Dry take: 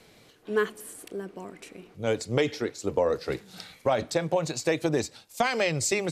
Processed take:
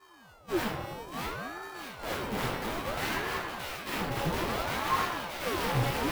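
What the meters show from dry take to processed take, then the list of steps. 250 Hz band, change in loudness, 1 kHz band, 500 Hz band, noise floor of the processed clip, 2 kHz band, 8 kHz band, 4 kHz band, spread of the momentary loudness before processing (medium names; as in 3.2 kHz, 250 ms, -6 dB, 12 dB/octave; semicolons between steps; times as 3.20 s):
-4.0 dB, -4.5 dB, +1.5 dB, -9.0 dB, -56 dBFS, -1.0 dB, -8.5 dB, -0.5 dB, 17 LU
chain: sorted samples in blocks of 64 samples; bass shelf 170 Hz +4.5 dB; integer overflow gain 24.5 dB; two-band feedback delay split 1.2 kHz, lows 94 ms, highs 622 ms, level -4 dB; dynamic bell 7.2 kHz, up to -5 dB, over -48 dBFS, Q 0.92; simulated room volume 300 m³, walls mixed, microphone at 2.7 m; ring modulator with a swept carrier 600 Hz, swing 80%, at 0.6 Hz; trim -8 dB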